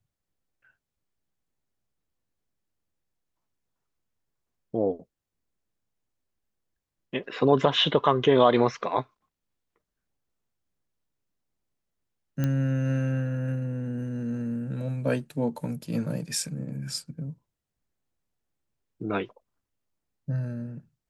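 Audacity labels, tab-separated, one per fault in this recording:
12.440000	12.440000	click −15 dBFS

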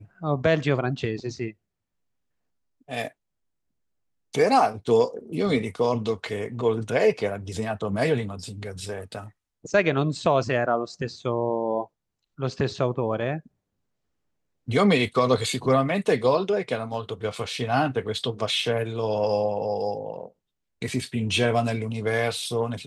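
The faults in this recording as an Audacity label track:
16.940000	16.940000	drop-out 2.9 ms

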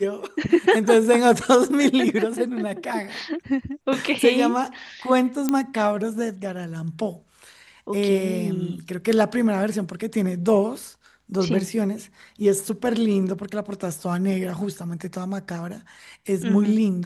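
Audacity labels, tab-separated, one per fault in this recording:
5.490000	5.490000	click −9 dBFS

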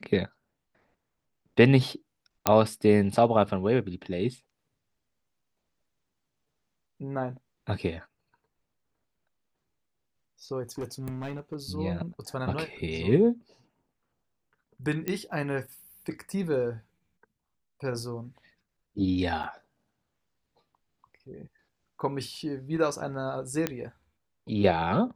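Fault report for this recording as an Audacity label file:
2.470000	2.470000	click −4 dBFS
10.780000	11.550000	clipping −29.5 dBFS
15.080000	15.080000	click −15 dBFS
19.430000	19.440000	drop-out 7.5 ms
23.670000	23.670000	click −12 dBFS

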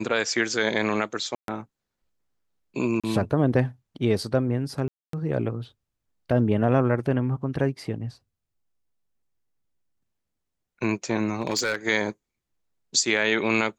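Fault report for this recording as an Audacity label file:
1.350000	1.480000	drop-out 132 ms
3.000000	3.040000	drop-out 36 ms
4.880000	5.130000	drop-out 253 ms
11.410000	11.750000	clipping −19.5 dBFS

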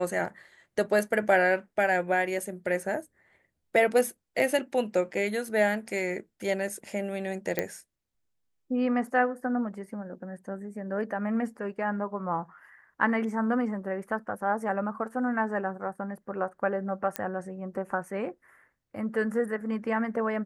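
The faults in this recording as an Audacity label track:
7.590000	7.590000	click −12 dBFS
17.160000	17.160000	click −12 dBFS

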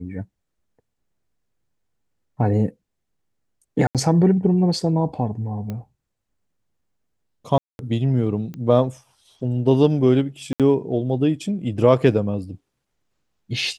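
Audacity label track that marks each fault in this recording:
3.870000	3.950000	drop-out 77 ms
5.700000	5.700000	click −18 dBFS
7.580000	7.790000	drop-out 211 ms
8.540000	8.540000	click −22 dBFS
10.530000	10.600000	drop-out 67 ms

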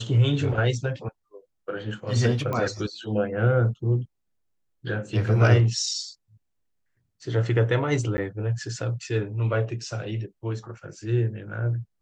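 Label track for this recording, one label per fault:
2.530000	2.530000	click −17 dBFS
8.170000	8.180000	drop-out 10 ms

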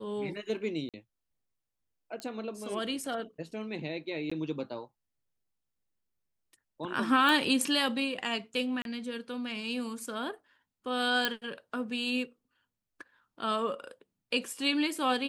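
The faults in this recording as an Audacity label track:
0.890000	0.940000	drop-out 47 ms
2.200000	2.200000	click −24 dBFS
4.300000	4.320000	drop-out 15 ms
7.290000	7.290000	click
8.820000	8.850000	drop-out 32 ms
11.250000	11.250000	click −12 dBFS

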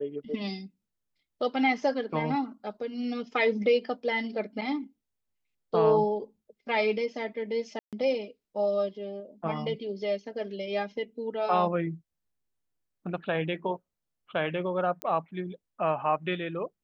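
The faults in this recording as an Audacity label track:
7.790000	7.930000	drop-out 137 ms
15.020000	15.020000	click −17 dBFS

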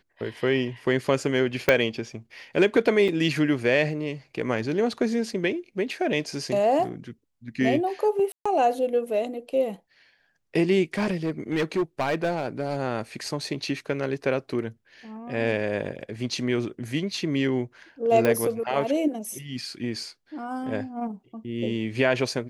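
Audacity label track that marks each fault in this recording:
1.690000	1.690000	click −5 dBFS
3.080000	3.090000	drop-out 5.6 ms
8.320000	8.460000	drop-out 135 ms
10.940000	12.780000	clipping −20 dBFS
18.250000	18.250000	click −10 dBFS

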